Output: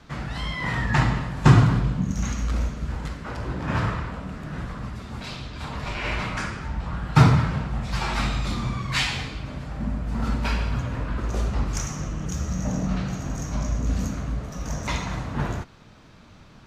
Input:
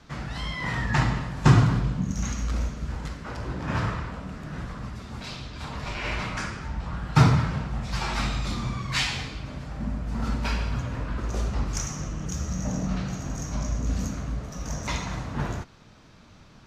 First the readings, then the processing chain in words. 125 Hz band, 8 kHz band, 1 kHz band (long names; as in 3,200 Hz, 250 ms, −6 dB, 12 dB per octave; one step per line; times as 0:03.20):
+2.5 dB, −0.5 dB, +2.5 dB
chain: parametric band 5,700 Hz −3.5 dB 0.77 octaves
level +2.5 dB